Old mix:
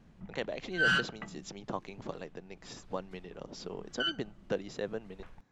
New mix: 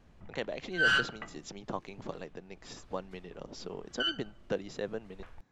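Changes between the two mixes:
background: add parametric band 180 Hz −12.5 dB 0.69 octaves
reverb: on, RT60 0.60 s

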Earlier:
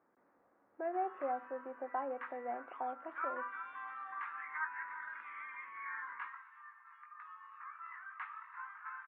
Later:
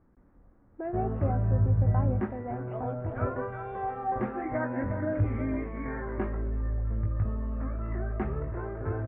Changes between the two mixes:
speech: remove high-pass filter 560 Hz 12 dB per octave
background: remove Butterworth high-pass 980 Hz 72 dB per octave

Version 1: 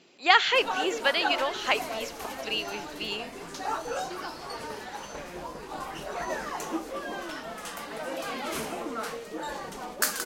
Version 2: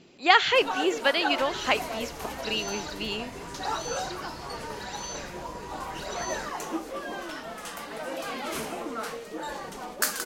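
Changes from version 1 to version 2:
speech: remove high-pass filter 520 Hz 6 dB per octave
second sound +11.5 dB

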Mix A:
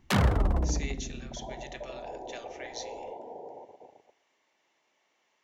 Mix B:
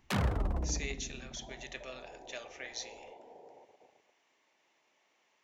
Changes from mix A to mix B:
first sound −7.0 dB
second sound −11.0 dB
master: remove notch filter 2,500 Hz, Q 26

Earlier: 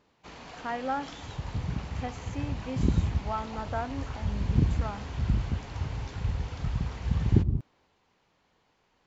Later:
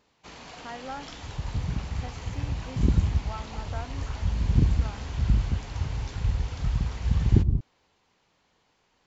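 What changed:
speech −7.0 dB
second sound: remove high-pass filter 84 Hz 6 dB per octave
master: add high-shelf EQ 3,800 Hz +7 dB

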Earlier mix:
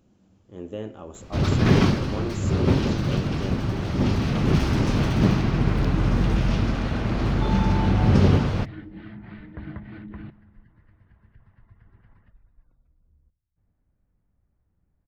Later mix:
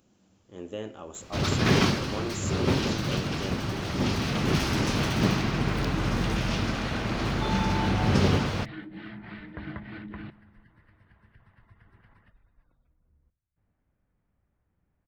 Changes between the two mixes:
first sound: send off
second sound +3.0 dB
master: add spectral tilt +2 dB per octave

